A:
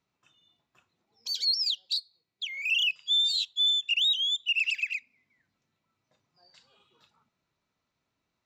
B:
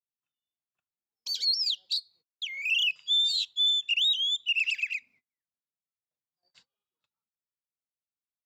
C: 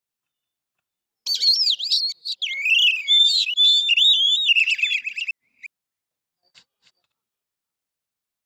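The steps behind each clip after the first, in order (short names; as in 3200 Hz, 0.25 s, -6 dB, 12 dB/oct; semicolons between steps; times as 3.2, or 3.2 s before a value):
gate -58 dBFS, range -30 dB
reverse delay 0.354 s, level -7.5 dB; gain +9 dB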